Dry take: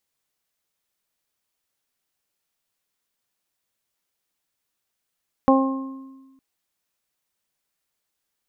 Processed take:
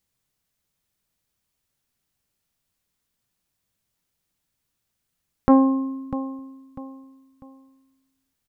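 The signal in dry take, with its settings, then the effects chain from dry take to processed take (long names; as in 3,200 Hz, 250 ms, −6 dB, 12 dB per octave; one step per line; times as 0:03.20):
harmonic partials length 0.91 s, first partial 267 Hz, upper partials −2/−4/−5 dB, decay 1.36 s, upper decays 0.74/0.62/1.02 s, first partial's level −13.5 dB
bass and treble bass +13 dB, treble +1 dB
repeating echo 647 ms, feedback 34%, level −14.5 dB
saturating transformer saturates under 240 Hz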